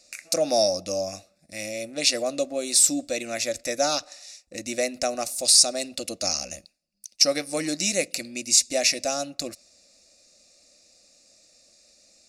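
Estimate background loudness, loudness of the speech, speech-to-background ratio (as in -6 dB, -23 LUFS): -42.0 LUFS, -23.0 LUFS, 19.0 dB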